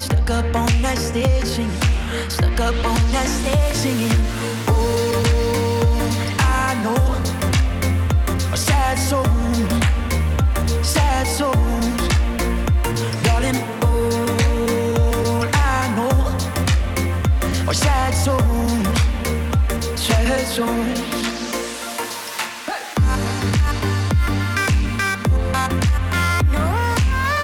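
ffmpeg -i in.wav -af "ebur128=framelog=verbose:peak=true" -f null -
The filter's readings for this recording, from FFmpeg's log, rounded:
Integrated loudness:
  I:         -19.2 LUFS
  Threshold: -29.2 LUFS
Loudness range:
  LRA:         2.4 LU
  Threshold: -39.2 LUFS
  LRA low:   -21.0 LUFS
  LRA high:  -18.6 LUFS
True peak:
  Peak:       -8.1 dBFS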